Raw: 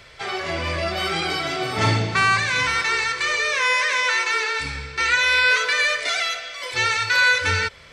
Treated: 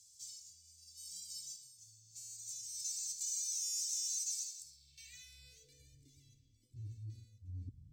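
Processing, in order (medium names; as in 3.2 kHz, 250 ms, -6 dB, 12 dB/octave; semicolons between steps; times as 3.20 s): elliptic band-stop 110–7500 Hz, stop band 80 dB; treble shelf 2.5 kHz -10 dB; reverse; compression 5:1, threshold -46 dBFS, peak gain reduction 22.5 dB; reverse; careless resampling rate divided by 2×, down none, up hold; band-pass sweep 6.3 kHz -> 290 Hz, 4.63–5.94 s; trim +17 dB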